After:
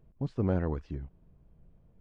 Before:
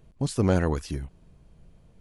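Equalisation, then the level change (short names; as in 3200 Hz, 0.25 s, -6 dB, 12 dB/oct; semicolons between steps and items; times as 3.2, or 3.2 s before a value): tape spacing loss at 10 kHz 40 dB; -5.0 dB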